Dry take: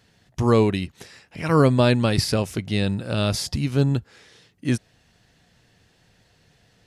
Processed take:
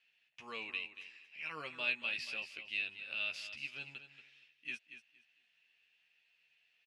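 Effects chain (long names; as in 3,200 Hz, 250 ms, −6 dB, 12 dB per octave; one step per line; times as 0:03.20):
resonant band-pass 2,600 Hz, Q 7.3
double-tracking delay 13 ms −5 dB
repeating echo 233 ms, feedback 20%, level −11.5 dB
level −1.5 dB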